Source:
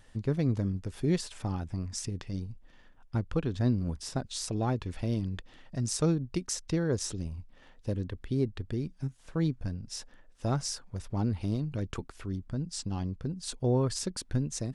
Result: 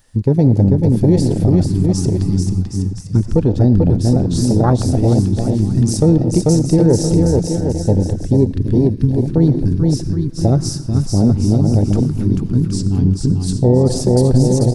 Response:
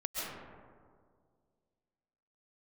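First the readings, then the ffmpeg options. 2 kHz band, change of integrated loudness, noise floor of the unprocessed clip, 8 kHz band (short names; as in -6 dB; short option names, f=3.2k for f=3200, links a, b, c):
n/a, +18.0 dB, -57 dBFS, +10.5 dB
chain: -filter_complex "[0:a]asplit=2[a][b];[1:a]atrim=start_sample=2205,asetrate=70560,aresample=44100[c];[b][c]afir=irnorm=-1:irlink=0,volume=-10dB[d];[a][d]amix=inputs=2:normalize=0,aexciter=amount=2.3:drive=6.1:freq=4.3k,aecho=1:1:440|770|1018|1203|1342:0.631|0.398|0.251|0.158|0.1,afwtdn=0.0447,alimiter=level_in=18.5dB:limit=-1dB:release=50:level=0:latency=1,volume=-2dB"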